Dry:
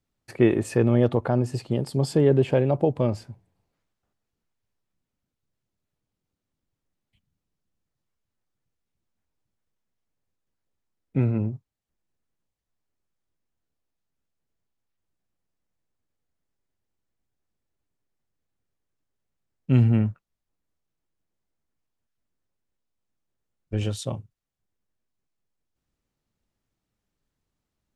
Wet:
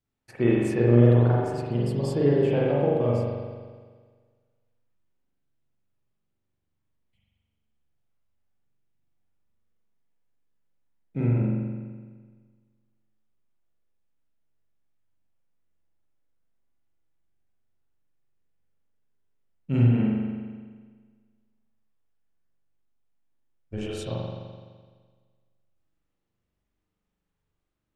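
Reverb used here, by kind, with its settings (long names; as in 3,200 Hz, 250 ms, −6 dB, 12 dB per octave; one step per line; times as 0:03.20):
spring reverb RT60 1.6 s, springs 42 ms, chirp 80 ms, DRR −6 dB
level −7 dB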